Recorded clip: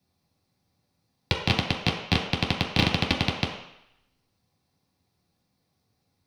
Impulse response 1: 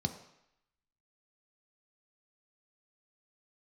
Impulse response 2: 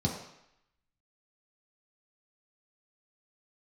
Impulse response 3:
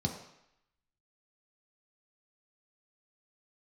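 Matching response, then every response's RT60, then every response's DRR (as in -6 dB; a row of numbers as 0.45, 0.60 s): 2; 0.80, 0.80, 0.80 s; 6.0, -3.5, 1.0 dB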